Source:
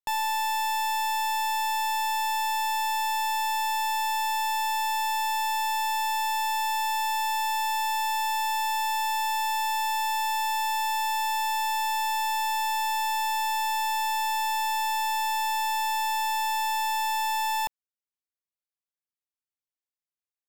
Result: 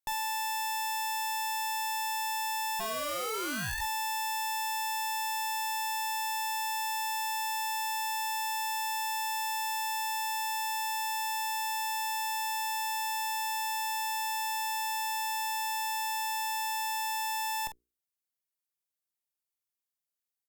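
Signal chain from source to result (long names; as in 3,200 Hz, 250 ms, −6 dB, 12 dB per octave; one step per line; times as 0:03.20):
high-shelf EQ 6,500 Hz +10 dB
mains-hum notches 60/120/180/240/300/360/420/480 Hz
0:02.79–0:03.80: ring modulation 190 Hz → 940 Hz
asymmetric clip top −33.5 dBFS, bottom −20 dBFS
double-tracking delay 47 ms −11 dB
level −3 dB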